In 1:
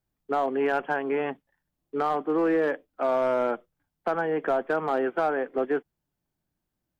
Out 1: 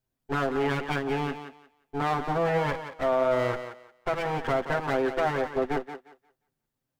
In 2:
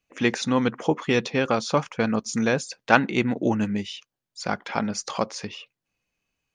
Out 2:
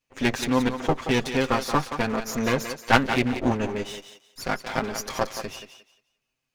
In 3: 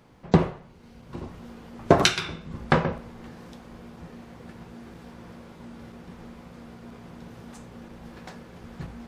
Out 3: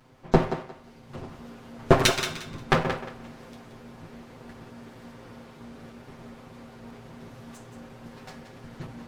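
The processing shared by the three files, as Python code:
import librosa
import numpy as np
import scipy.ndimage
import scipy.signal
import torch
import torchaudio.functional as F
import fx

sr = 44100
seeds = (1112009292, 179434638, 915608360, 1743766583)

y = fx.lower_of_two(x, sr, delay_ms=7.7)
y = fx.echo_thinned(y, sr, ms=177, feedback_pct=23, hz=290.0, wet_db=-9)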